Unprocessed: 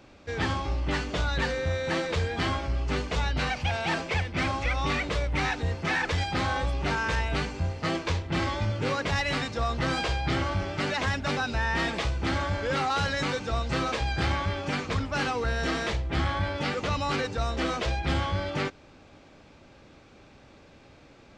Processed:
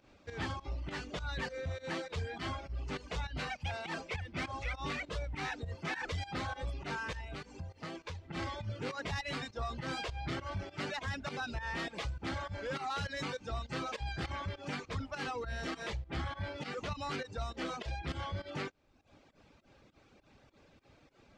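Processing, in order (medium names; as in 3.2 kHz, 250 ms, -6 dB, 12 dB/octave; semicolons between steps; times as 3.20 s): volume shaper 101 bpm, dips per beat 2, -12 dB, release 119 ms; saturation -20.5 dBFS, distortion -20 dB; reverb removal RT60 0.81 s; 7.16–8.23 s: compression, threshold -33 dBFS, peak gain reduction 7.5 dB; trim -7.5 dB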